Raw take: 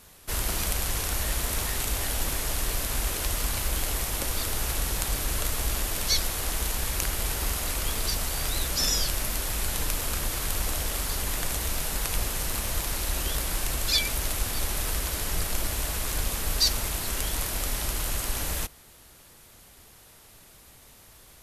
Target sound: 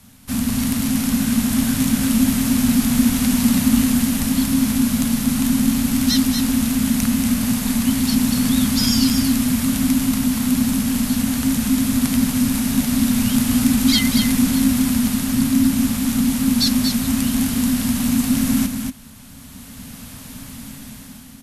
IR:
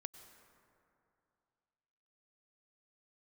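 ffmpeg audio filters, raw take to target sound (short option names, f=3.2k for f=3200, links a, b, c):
-filter_complex "[0:a]acontrast=31,lowshelf=f=470:t=q:w=3:g=6.5,asplit=2[a][b];[b]aecho=0:1:236:0.501[c];[a][c]amix=inputs=2:normalize=0,dynaudnorm=f=210:g=9:m=11.5dB,afreqshift=-280,volume=-3.5dB"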